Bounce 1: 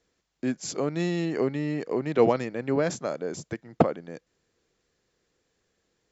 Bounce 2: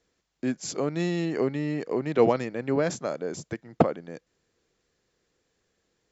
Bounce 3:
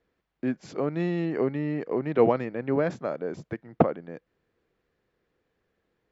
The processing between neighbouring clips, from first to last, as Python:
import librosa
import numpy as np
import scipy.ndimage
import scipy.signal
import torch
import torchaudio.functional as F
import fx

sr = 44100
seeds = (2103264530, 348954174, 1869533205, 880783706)

y1 = x
y2 = scipy.signal.sosfilt(scipy.signal.butter(2, 2400.0, 'lowpass', fs=sr, output='sos'), y1)